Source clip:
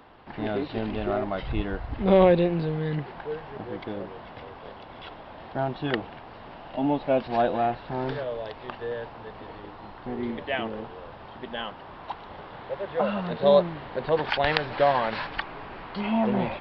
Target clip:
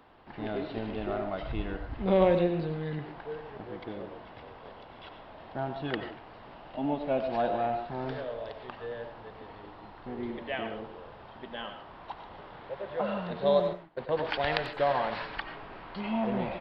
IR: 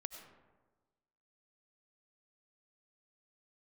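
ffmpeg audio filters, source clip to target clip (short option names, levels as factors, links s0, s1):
-filter_complex "[0:a]asettb=1/sr,asplit=3[s0][s1][s2];[s0]atrim=end=13.734[s3];[s1]atrim=start=13.73:end=14.77,asetpts=PTS-STARTPTS,afade=t=in:d=0.004:c=qsin,afade=t=out:st=1.036:d=0.004:c=qsin,agate=range=0.0708:threshold=0.0282:ratio=16:detection=peak[s4];[s2]atrim=start=14.766[s5];[s3][s4]acrossfade=d=0.004:c1=hsin:c2=qsin[s6];[s6][s5]acrossfade=d=0.004:c1=qsin:c2=hsin,asplit=2[s7][s8];[s8]adelay=90,highpass=300,lowpass=3400,asoftclip=type=hard:threshold=0.266,volume=0.178[s9];[s7][s9]amix=inputs=2:normalize=0[s10];[1:a]atrim=start_sample=2205,afade=t=out:st=0.21:d=0.01,atrim=end_sample=9702[s11];[s10][s11]afir=irnorm=-1:irlink=0,volume=0.794"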